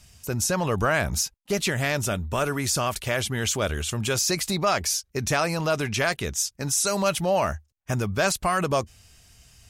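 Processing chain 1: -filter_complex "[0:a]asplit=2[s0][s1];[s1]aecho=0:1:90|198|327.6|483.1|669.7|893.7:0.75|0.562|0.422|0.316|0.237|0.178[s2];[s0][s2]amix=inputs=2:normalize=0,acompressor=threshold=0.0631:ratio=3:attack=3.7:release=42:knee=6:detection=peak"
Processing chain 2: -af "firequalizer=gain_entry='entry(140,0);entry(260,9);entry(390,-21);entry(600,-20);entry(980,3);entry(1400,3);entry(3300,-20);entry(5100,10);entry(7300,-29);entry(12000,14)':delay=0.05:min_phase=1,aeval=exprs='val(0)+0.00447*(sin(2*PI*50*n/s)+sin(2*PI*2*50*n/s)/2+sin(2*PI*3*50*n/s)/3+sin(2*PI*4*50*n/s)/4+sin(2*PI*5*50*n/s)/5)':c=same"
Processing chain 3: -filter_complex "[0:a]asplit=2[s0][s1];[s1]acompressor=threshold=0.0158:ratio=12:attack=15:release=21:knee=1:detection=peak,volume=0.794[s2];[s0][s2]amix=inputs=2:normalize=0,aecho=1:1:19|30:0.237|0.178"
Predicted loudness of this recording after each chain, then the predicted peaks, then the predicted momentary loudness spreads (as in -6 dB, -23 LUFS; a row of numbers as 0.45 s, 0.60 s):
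-25.5 LUFS, -24.5 LUFS, -22.5 LUFS; -11.5 dBFS, -9.0 dBFS, -8.0 dBFS; 3 LU, 6 LU, 4 LU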